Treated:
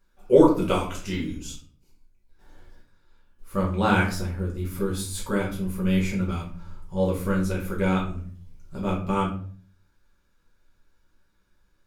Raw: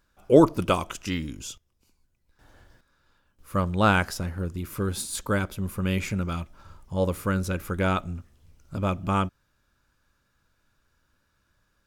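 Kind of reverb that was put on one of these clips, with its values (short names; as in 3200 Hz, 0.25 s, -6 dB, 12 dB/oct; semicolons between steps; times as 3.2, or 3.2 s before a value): shoebox room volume 38 m³, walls mixed, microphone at 1.1 m; gain -7 dB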